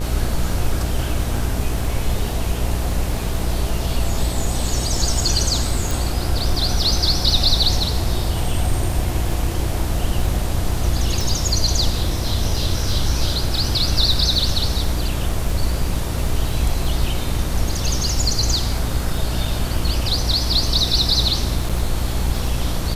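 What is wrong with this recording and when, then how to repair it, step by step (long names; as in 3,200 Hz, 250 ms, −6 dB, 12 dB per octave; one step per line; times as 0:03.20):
mains buzz 60 Hz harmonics 33 −24 dBFS
surface crackle 31 per second −27 dBFS
0:05.91: click
0:11.21: click
0:21.69–0:21.70: drop-out 6.1 ms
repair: click removal
hum removal 60 Hz, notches 33
repair the gap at 0:21.69, 6.1 ms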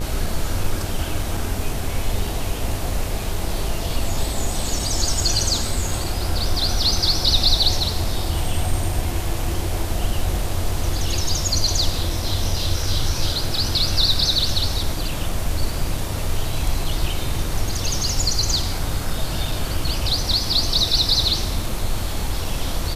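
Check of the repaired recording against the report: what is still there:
0:05.91: click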